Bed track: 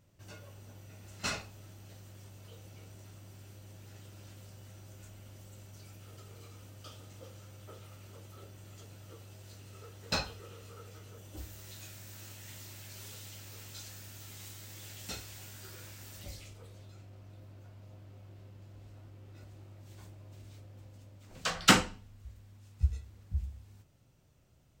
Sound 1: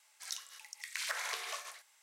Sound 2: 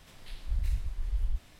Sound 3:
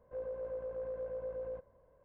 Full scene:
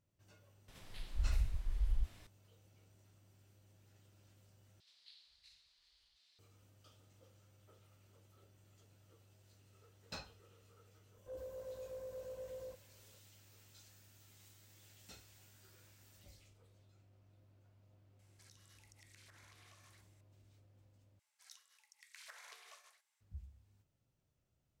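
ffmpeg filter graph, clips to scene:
ffmpeg -i bed.wav -i cue0.wav -i cue1.wav -i cue2.wav -filter_complex "[2:a]asplit=2[link_01][link_02];[1:a]asplit=2[link_03][link_04];[0:a]volume=-15.5dB[link_05];[link_02]bandpass=frequency=4300:width_type=q:width=4.3:csg=0[link_06];[link_03]acompressor=threshold=-51dB:ratio=6:attack=3.2:release=140:knee=1:detection=peak[link_07];[link_05]asplit=3[link_08][link_09][link_10];[link_08]atrim=end=4.804[link_11];[link_06]atrim=end=1.59,asetpts=PTS-STARTPTS,volume=-2.5dB[link_12];[link_09]atrim=start=6.386:end=21.194[link_13];[link_04]atrim=end=2.02,asetpts=PTS-STARTPTS,volume=-18dB[link_14];[link_10]atrim=start=23.206[link_15];[link_01]atrim=end=1.59,asetpts=PTS-STARTPTS,volume=-4dB,afade=type=in:duration=0.004:curve=hsin,afade=type=out:start_time=1.586:duration=0.004:curve=hsin,adelay=680[link_16];[3:a]atrim=end=2.04,asetpts=PTS-STARTPTS,volume=-7.5dB,afade=type=in:duration=0.004:curve=hsin,afade=type=out:start_time=2.036:duration=0.004:curve=hsin,adelay=11150[link_17];[link_07]atrim=end=2.02,asetpts=PTS-STARTPTS,volume=-11dB,afade=type=in:duration=0.004:curve=hsin,afade=type=out:start_time=2.016:duration=0.004:curve=hsin,adelay=18190[link_18];[link_11][link_12]acrossfade=duration=0.004:curve1=hsin:curve2=hsin[link_19];[link_19][link_13]acrossfade=duration=0.004:curve1=hsin:curve2=hsin[link_20];[link_20][link_14]acrossfade=duration=0.004:curve1=hsin:curve2=hsin[link_21];[link_21][link_15]acrossfade=duration=0.004:curve1=hsin:curve2=hsin[link_22];[link_22][link_16][link_17][link_18]amix=inputs=4:normalize=0" out.wav

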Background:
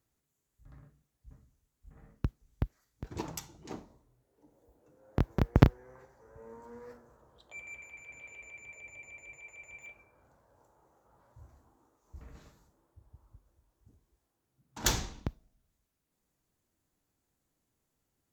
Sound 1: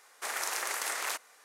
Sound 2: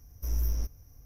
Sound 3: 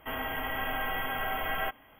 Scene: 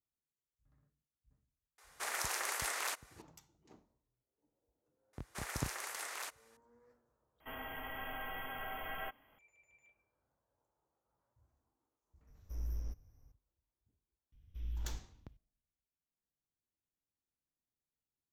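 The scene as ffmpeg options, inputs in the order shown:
ffmpeg -i bed.wav -i cue0.wav -i cue1.wav -i cue2.wav -filter_complex "[1:a]asplit=2[link_01][link_02];[2:a]asplit=2[link_03][link_04];[0:a]volume=-19dB[link_05];[link_03]highshelf=frequency=4900:gain=-12[link_06];[link_04]firequalizer=gain_entry='entry(140,0);entry(670,-14);entry(3300,14);entry(5500,-21)':delay=0.05:min_phase=1[link_07];[link_05]asplit=2[link_08][link_09];[link_08]atrim=end=7.404[link_10];[3:a]atrim=end=1.99,asetpts=PTS-STARTPTS,volume=-11dB[link_11];[link_09]atrim=start=9.386[link_12];[link_01]atrim=end=1.44,asetpts=PTS-STARTPTS,volume=-4dB,afade=type=in:duration=0.004:curve=hsin,afade=type=out:start_time=1.436:duration=0.004:curve=hsin,adelay=1780[link_13];[link_02]atrim=end=1.44,asetpts=PTS-STARTPTS,volume=-9.5dB,afade=type=in:duration=0.004:curve=hsin,afade=type=out:start_time=1.436:duration=0.004:curve=hsin,adelay=226233S[link_14];[link_06]atrim=end=1.05,asetpts=PTS-STARTPTS,volume=-10.5dB,afade=type=in:duration=0.004:curve=hsin,afade=type=out:start_time=1.046:duration=0.004:curve=hsin,adelay=12270[link_15];[link_07]atrim=end=1.05,asetpts=PTS-STARTPTS,volume=-11.5dB,afade=type=in:duration=0.004:curve=hsin,afade=type=out:start_time=1.046:duration=0.004:curve=hsin,adelay=14320[link_16];[link_10][link_11]acrossfade=duration=0.004:curve1=hsin:curve2=hsin[link_17];[link_17][link_12]acrossfade=duration=0.004:curve1=hsin:curve2=hsin[link_18];[link_18][link_13][link_14][link_15][link_16]amix=inputs=5:normalize=0" out.wav

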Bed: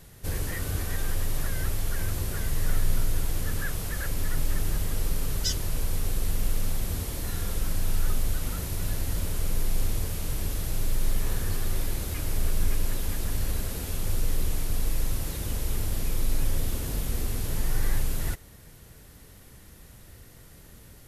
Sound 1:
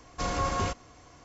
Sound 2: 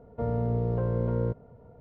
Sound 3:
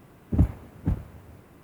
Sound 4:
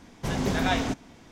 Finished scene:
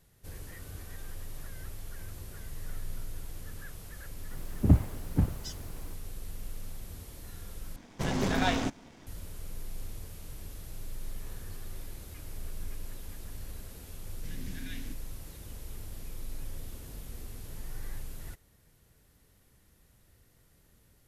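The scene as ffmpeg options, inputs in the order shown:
ffmpeg -i bed.wav -i cue0.wav -i cue1.wav -i cue2.wav -i cue3.wav -filter_complex "[4:a]asplit=2[link_01][link_02];[0:a]volume=-14dB[link_03];[link_01]aeval=exprs='if(lt(val(0),0),0.447*val(0),val(0))':channel_layout=same[link_04];[link_02]asuperstop=centerf=730:order=20:qfactor=0.62[link_05];[link_03]asplit=2[link_06][link_07];[link_06]atrim=end=7.764[link_08];[link_04]atrim=end=1.31[link_09];[link_07]atrim=start=9.066[link_10];[3:a]atrim=end=1.63,asetpts=PTS-STARTPTS,afade=type=in:duration=0.004:curve=hsin,afade=type=out:start_time=1.626:duration=0.004:curve=hsin,adelay=4310[link_11];[link_05]atrim=end=1.31,asetpts=PTS-STARTPTS,volume=-17dB,afade=type=in:duration=0.004:curve=hsin,afade=type=out:start_time=1.306:duration=0.004:curve=hsin,adelay=14000[link_12];[link_08][link_09]acrossfade=duration=0.004:curve1=hsin:curve2=hsin[link_13];[link_13][link_10]acrossfade=duration=0.004:curve1=hsin:curve2=hsin[link_14];[link_14][link_11][link_12]amix=inputs=3:normalize=0" out.wav

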